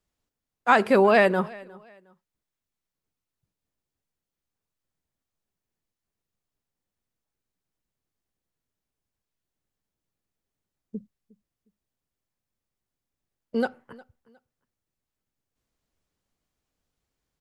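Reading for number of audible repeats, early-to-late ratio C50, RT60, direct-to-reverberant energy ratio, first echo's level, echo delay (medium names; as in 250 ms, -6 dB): 2, no reverb, no reverb, no reverb, -23.0 dB, 359 ms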